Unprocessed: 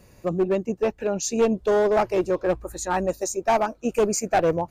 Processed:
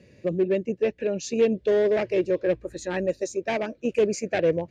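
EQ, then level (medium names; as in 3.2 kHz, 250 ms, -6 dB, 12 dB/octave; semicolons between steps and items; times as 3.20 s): band-pass 110–3700 Hz; high-order bell 1 kHz -15 dB 1.2 oct; dynamic bell 230 Hz, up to -4 dB, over -31 dBFS, Q 0.77; +2.0 dB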